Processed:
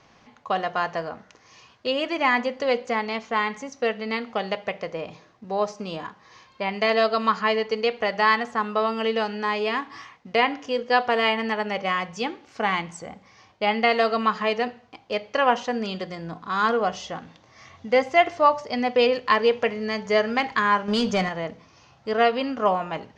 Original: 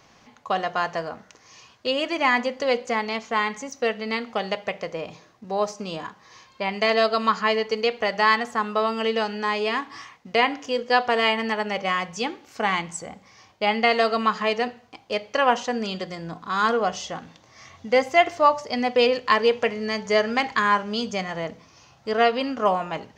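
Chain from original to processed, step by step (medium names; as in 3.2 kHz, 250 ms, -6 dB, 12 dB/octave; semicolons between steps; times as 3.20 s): 20.88–21.29 s: waveshaping leveller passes 2; distance through air 84 m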